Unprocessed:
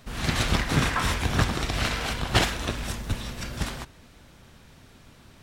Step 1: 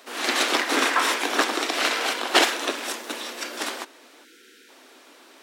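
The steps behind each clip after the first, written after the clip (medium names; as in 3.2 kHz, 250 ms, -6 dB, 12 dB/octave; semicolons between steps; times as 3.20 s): steep high-pass 280 Hz 48 dB/octave; time-frequency box 4.24–4.68 s, 510–1300 Hz -27 dB; trim +5.5 dB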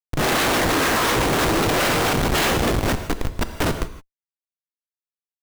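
word length cut 8-bit, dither none; Schmitt trigger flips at -25 dBFS; gated-style reverb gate 190 ms flat, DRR 9 dB; trim +6.5 dB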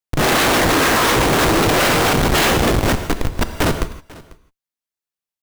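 delay 494 ms -22 dB; trim +4.5 dB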